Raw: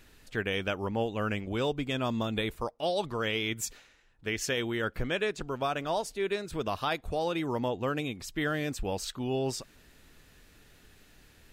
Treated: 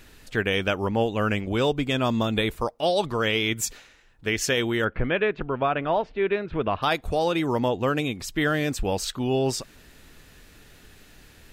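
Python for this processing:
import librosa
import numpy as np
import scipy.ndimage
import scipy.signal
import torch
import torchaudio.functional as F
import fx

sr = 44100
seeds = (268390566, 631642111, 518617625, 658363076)

y = fx.lowpass(x, sr, hz=2800.0, slope=24, at=(4.84, 6.82), fade=0.02)
y = y * 10.0 ** (7.0 / 20.0)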